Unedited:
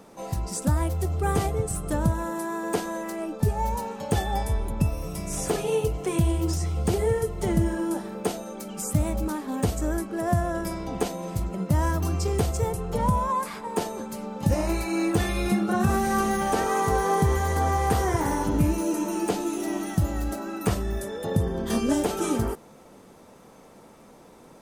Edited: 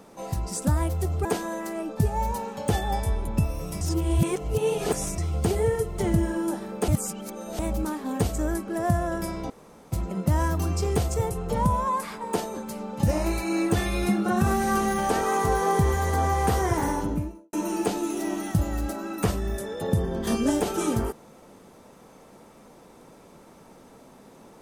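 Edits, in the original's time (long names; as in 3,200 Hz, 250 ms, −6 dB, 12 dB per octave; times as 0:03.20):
0:01.25–0:02.68: remove
0:05.24–0:06.61: reverse
0:08.31–0:09.02: reverse
0:10.93–0:11.35: fill with room tone
0:18.26–0:18.96: fade out and dull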